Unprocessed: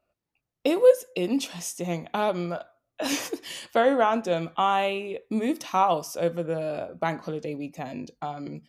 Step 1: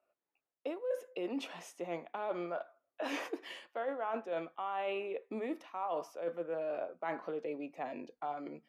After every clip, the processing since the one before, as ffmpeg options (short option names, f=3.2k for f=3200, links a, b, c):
-filter_complex "[0:a]acrossover=split=300 2700:gain=0.0708 1 0.112[a][b][c];[a][b][c]amix=inputs=3:normalize=0,areverse,acompressor=threshold=-31dB:ratio=12,areverse,volume=-2.5dB"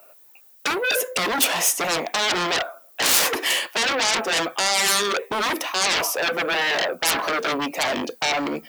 -af "aeval=exprs='0.0596*sin(PI/2*7.08*val(0)/0.0596)':c=same,aemphasis=mode=production:type=bsi,volume=5dB"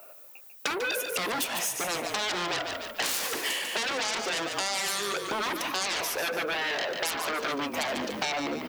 -filter_complex "[0:a]asplit=5[a][b][c][d][e];[b]adelay=145,afreqshift=-38,volume=-8.5dB[f];[c]adelay=290,afreqshift=-76,volume=-17.6dB[g];[d]adelay=435,afreqshift=-114,volume=-26.7dB[h];[e]adelay=580,afreqshift=-152,volume=-35.9dB[i];[a][f][g][h][i]amix=inputs=5:normalize=0,acompressor=threshold=-29dB:ratio=6,volume=1dB"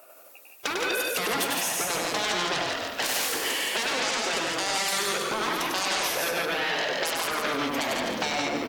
-filter_complex "[0:a]asplit=2[a][b];[b]aecho=0:1:99.13|169.1:0.631|0.631[c];[a][c]amix=inputs=2:normalize=0" -ar 48000 -c:a aac -b:a 64k